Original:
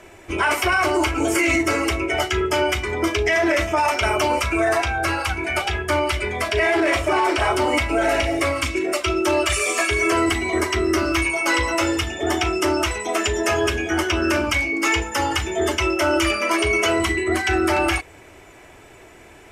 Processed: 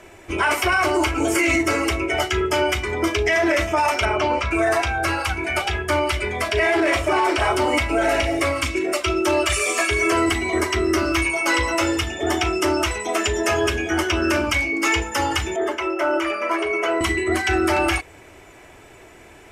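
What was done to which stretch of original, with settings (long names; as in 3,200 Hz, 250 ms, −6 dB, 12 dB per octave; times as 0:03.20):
0:04.05–0:04.51: high-frequency loss of the air 140 metres
0:15.56–0:17.01: three-way crossover with the lows and the highs turned down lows −23 dB, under 280 Hz, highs −14 dB, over 2,200 Hz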